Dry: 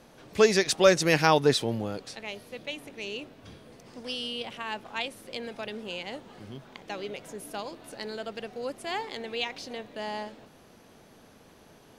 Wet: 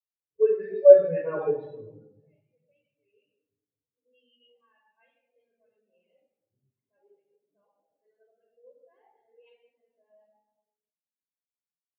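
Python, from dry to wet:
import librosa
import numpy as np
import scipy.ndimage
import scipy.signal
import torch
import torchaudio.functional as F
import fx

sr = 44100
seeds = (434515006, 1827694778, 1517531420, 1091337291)

y = fx.spec_delay(x, sr, highs='late', ms=133)
y = scipy.signal.sosfilt(scipy.signal.butter(2, 3200.0, 'lowpass', fs=sr, output='sos'), y)
y = fx.low_shelf(y, sr, hz=490.0, db=-5.5)
y = fx.room_shoebox(y, sr, seeds[0], volume_m3=3600.0, walls='mixed', distance_m=5.3)
y = fx.spectral_expand(y, sr, expansion=2.5)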